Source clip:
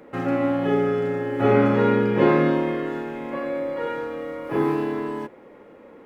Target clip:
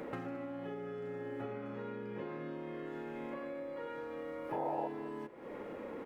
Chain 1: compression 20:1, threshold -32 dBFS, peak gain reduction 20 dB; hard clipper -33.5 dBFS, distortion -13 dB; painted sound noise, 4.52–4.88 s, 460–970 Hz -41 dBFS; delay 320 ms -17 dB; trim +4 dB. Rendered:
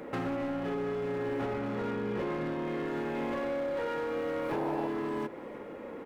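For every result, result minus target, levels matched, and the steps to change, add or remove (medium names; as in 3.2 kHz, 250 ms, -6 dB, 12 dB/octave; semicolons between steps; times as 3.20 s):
compression: peak gain reduction -11 dB; echo 103 ms late
change: compression 20:1, threshold -43.5 dBFS, peak gain reduction 31 dB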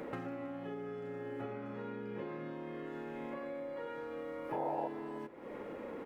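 echo 103 ms late
change: delay 217 ms -17 dB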